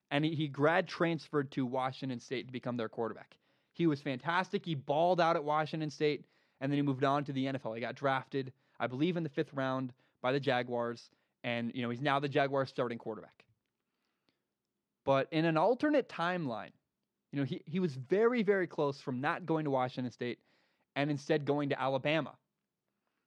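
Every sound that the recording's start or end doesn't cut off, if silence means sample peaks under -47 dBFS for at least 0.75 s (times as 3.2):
15.06–22.31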